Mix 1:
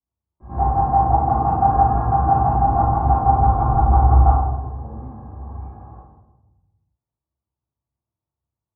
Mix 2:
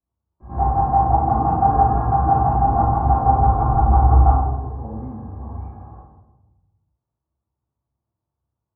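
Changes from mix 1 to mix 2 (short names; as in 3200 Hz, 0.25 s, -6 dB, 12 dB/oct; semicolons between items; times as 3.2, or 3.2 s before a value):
speech +6.0 dB; master: add air absorption 56 m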